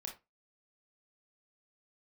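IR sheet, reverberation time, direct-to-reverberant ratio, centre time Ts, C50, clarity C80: 0.20 s, 0.5 dB, 19 ms, 9.0 dB, 18.0 dB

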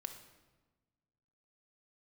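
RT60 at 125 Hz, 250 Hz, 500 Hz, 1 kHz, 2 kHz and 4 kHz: 2.0 s, 1.7 s, 1.3 s, 1.2 s, 1.0 s, 0.90 s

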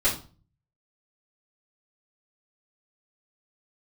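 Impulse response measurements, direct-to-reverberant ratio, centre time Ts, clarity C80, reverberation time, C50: -11.0 dB, 24 ms, 14.5 dB, 0.35 s, 9.0 dB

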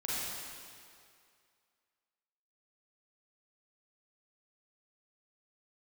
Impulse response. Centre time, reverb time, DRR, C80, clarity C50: 165 ms, 2.3 s, -8.5 dB, -2.0 dB, -5.0 dB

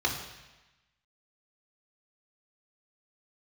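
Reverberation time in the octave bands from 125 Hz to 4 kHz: 1.1 s, 1.1 s, 1.0 s, 1.1 s, 1.2 s, 1.1 s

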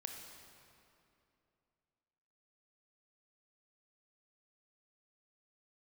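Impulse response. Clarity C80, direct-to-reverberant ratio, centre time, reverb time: 4.5 dB, 2.5 dB, 71 ms, 2.7 s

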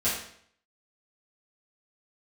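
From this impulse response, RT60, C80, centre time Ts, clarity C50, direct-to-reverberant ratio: 0.60 s, 6.5 dB, 46 ms, 2.5 dB, -11.5 dB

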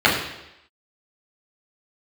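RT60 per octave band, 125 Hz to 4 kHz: 0.75 s, 0.85 s, 0.90 s, 0.85 s, 0.90 s, 0.90 s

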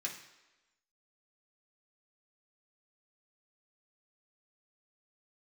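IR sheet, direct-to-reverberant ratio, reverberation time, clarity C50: -2.5 dB, 1.1 s, 7.5 dB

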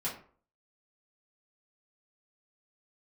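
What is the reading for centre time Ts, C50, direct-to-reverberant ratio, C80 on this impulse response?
28 ms, 8.0 dB, -8.5 dB, 12.5 dB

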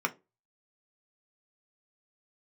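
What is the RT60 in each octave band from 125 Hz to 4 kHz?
0.30 s, 0.30 s, 0.30 s, 0.20 s, 0.20 s, 0.15 s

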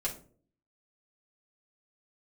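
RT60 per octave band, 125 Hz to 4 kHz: 0.70 s, 0.70 s, 0.60 s, 0.40 s, 0.30 s, 0.25 s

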